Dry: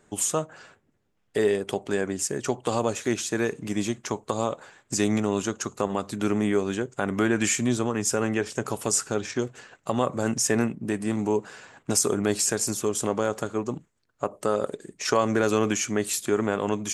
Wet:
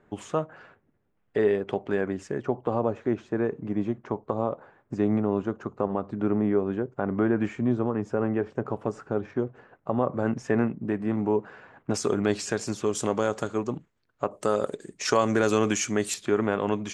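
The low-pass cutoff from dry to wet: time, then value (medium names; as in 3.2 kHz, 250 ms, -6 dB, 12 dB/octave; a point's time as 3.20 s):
2.1 kHz
from 2.43 s 1.1 kHz
from 10.14 s 1.7 kHz
from 11.94 s 3.9 kHz
from 12.89 s 6.9 kHz
from 13.67 s 4.1 kHz
from 14.31 s 9 kHz
from 16.14 s 3.5 kHz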